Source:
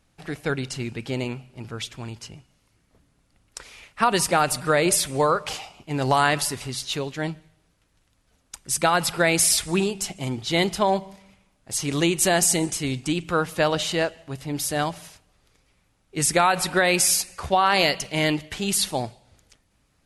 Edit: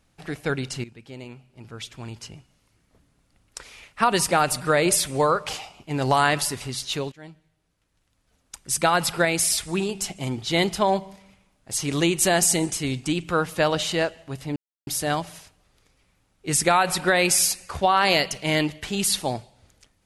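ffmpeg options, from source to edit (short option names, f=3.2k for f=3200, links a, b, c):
-filter_complex "[0:a]asplit=6[a][b][c][d][e][f];[a]atrim=end=0.84,asetpts=PTS-STARTPTS,afade=t=out:st=0.836:d=0.004:c=hsin:silence=0.211349[g];[b]atrim=start=0.84:end=7.12,asetpts=PTS-STARTPTS,afade=t=in:d=1.37:c=qua:silence=0.211349,afade=t=out:st=6.276:d=0.004:c=hsin:silence=0.105925[h];[c]atrim=start=7.12:end=9.252,asetpts=PTS-STARTPTS,afade=t=in:d=1.61:silence=0.105925[i];[d]atrim=start=9.248:end=9.892,asetpts=PTS-STARTPTS,volume=-3dB[j];[e]atrim=start=9.888:end=14.56,asetpts=PTS-STARTPTS,afade=t=out:st=4.668:d=0.004:c=hsin,apad=pad_dur=0.31[k];[f]atrim=start=14.56,asetpts=PTS-STARTPTS,afade=t=in:d=0.004:c=hsin[l];[g][h][i]concat=n=3:v=0:a=1[m];[m][j]acrossfade=d=0.004:c1=hsin:c2=hsin[n];[k][l]concat=n=2:v=0:a=1[o];[n][o]acrossfade=d=0.004:c1=hsin:c2=hsin"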